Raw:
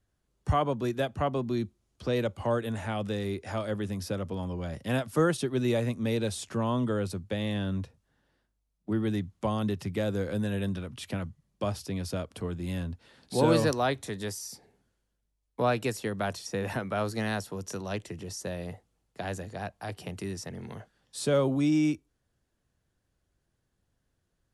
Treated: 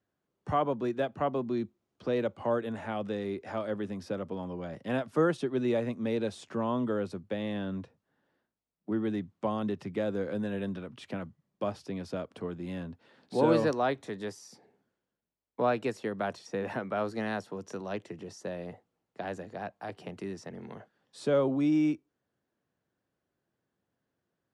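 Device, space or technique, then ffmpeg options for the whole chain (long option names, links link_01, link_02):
through cloth: -af "highpass=190,lowpass=8600,highshelf=frequency=3300:gain=-13"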